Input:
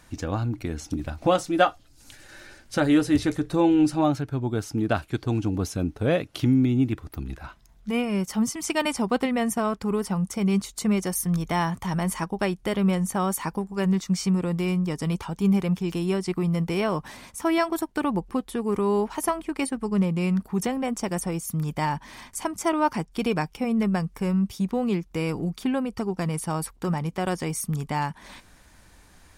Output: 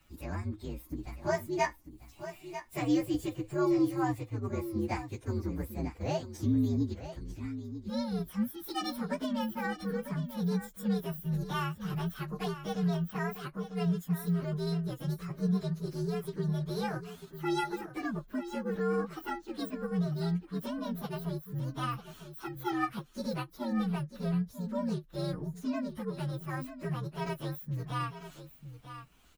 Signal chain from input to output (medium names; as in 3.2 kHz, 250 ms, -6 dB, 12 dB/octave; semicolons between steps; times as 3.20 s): frequency axis rescaled in octaves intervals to 124%; delay 945 ms -11.5 dB; endings held to a fixed fall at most 350 dB/s; trim -7 dB